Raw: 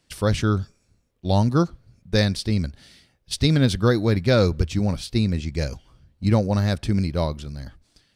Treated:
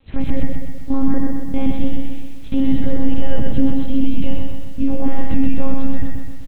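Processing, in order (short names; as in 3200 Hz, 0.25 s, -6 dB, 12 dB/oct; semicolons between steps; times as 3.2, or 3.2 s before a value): speed glide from 141% -> 111%; bell 160 Hz +9.5 dB 0.49 oct; compressor 6:1, threshold -15 dBFS, peak gain reduction 7.5 dB; harmonic-percussive split percussive -17 dB; monotone LPC vocoder at 8 kHz 270 Hz; feedback echo 91 ms, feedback 40%, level -15 dB; maximiser +19 dB; lo-fi delay 0.127 s, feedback 55%, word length 7-bit, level -4 dB; gain -6.5 dB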